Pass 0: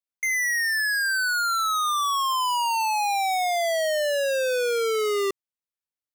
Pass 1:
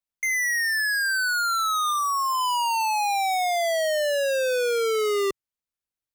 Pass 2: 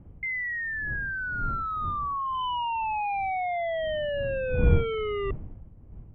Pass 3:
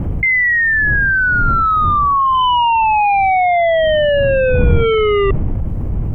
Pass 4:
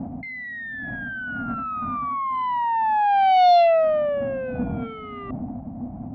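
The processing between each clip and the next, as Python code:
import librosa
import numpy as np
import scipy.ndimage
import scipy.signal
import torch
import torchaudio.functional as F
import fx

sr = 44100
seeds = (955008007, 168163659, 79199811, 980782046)

y1 = fx.spec_repair(x, sr, seeds[0], start_s=1.93, length_s=0.47, low_hz=1600.0, high_hz=3900.0, source='both')
y1 = fx.low_shelf(y1, sr, hz=120.0, db=10.0)
y2 = fx.dmg_wind(y1, sr, seeds[1], corner_hz=95.0, level_db=-25.0)
y2 = scipy.signal.sosfilt(scipy.signal.cheby1(6, 3, 3200.0, 'lowpass', fs=sr, output='sos'), y2)
y2 = y2 * 10.0 ** (-4.5 / 20.0)
y3 = fx.env_flatten(y2, sr, amount_pct=70)
y3 = y3 * 10.0 ** (7.0 / 20.0)
y4 = fx.double_bandpass(y3, sr, hz=420.0, octaves=1.5)
y4 = fx.cheby_harmonics(y4, sr, harmonics=(5, 6), levels_db=(-22, -22), full_scale_db=-10.0)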